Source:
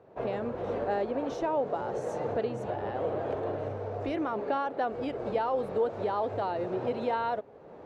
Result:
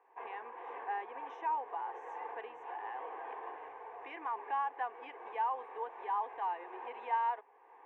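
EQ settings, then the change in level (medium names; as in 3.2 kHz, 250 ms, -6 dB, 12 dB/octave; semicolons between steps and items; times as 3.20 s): ladder band-pass 1.4 kHz, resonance 35%; static phaser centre 900 Hz, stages 8; +11.0 dB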